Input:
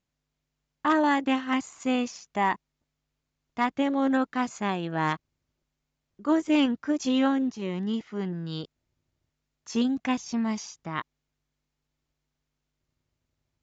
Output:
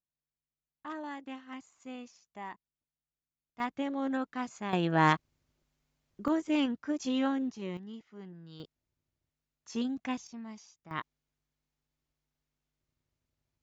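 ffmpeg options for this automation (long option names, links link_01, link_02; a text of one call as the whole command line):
ffmpeg -i in.wav -af "asetnsamples=nb_out_samples=441:pad=0,asendcmd='3.6 volume volume -8.5dB;4.73 volume volume 2.5dB;6.28 volume volume -6.5dB;7.77 volume volume -16dB;8.6 volume volume -8dB;10.27 volume volume -16.5dB;10.91 volume volume -5dB',volume=-18dB" out.wav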